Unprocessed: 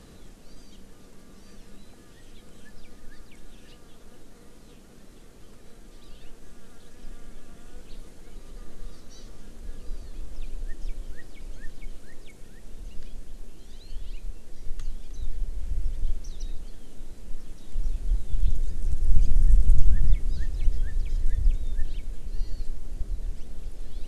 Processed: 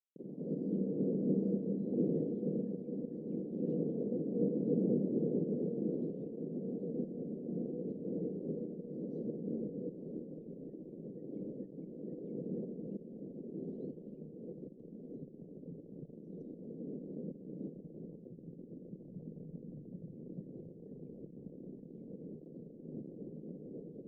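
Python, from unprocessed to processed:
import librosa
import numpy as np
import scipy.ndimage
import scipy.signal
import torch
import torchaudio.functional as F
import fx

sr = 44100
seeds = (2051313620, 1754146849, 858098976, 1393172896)

y = fx.recorder_agc(x, sr, target_db=-11.5, rise_db_per_s=47.0, max_gain_db=30)
y = np.where(np.abs(y) >= 10.0 ** (-31.5 / 20.0), y, 0.0)
y = scipy.signal.sosfilt(scipy.signal.ellip(3, 1.0, 50, [160.0, 500.0], 'bandpass', fs=sr, output='sos'), y)
y = y * 10.0 ** (-4.5 / 20.0)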